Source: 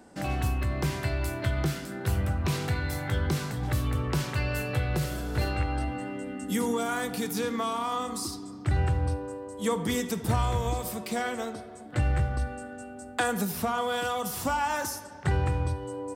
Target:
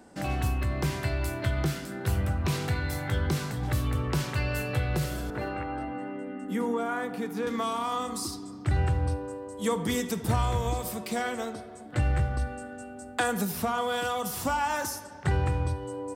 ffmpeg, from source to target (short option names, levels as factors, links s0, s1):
-filter_complex "[0:a]asettb=1/sr,asplit=3[s0][s1][s2];[s0]atrim=end=5.304[s3];[s1]atrim=start=5.3:end=7.47,asetpts=PTS-STARTPTS,afade=t=in:d=0.004:c=qsin,afade=t=out:st=2.166:d=0.004:c=qsin,acrossover=split=160 2300:gain=0.178 1 0.178[s4][s5][s6];[s4][s5][s6]amix=inputs=3:normalize=0[s7];[s2]atrim=start=7.466[s8];[s3][s7]acrossfade=d=0.004:c1=hsin:c2=qsin[s9];[s9][s8]acrossfade=d=0.004:c1=qsin:c2=hsin"